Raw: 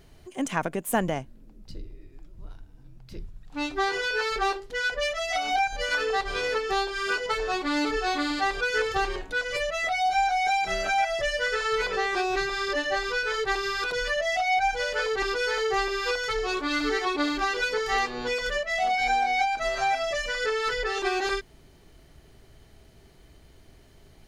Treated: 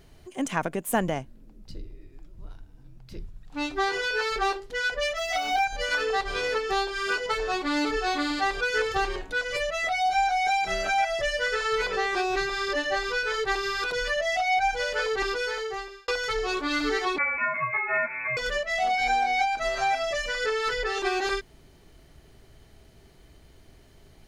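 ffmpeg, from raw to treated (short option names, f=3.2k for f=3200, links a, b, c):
-filter_complex "[0:a]asplit=3[a][b][c];[a]afade=t=out:st=5.16:d=0.02[d];[b]acrusher=bits=7:mix=0:aa=0.5,afade=t=in:st=5.16:d=0.02,afade=t=out:st=5.64:d=0.02[e];[c]afade=t=in:st=5.64:d=0.02[f];[d][e][f]amix=inputs=3:normalize=0,asettb=1/sr,asplit=3[g][h][i];[g]atrim=end=17.184[j];[h]atrim=start=17.18:end=18.37,asetpts=PTS-STARTPTS,afade=t=in:d=0.004:c=qsin,afade=t=out:st=1.186:d=0.004:c=qsin,lowpass=f=2.2k:t=q:w=0.5098,lowpass=f=2.2k:t=q:w=0.6013,lowpass=f=2.2k:t=q:w=0.9,lowpass=f=2.2k:t=q:w=2.563,afreqshift=-2600[k];[i]atrim=start=18.366[l];[j][k]acrossfade=d=0.004:c1=hsin:c2=qsin[m];[m][l]acrossfade=d=0.004:c1=qsin:c2=hsin,asplit=2[n][o];[n]atrim=end=16.08,asetpts=PTS-STARTPTS,afade=t=out:st=15.25:d=0.83[p];[o]atrim=start=16.08,asetpts=PTS-STARTPTS,afade=t=in:d=0.004:c=hsin[q];[p][q]concat=n=2:v=0:a=1"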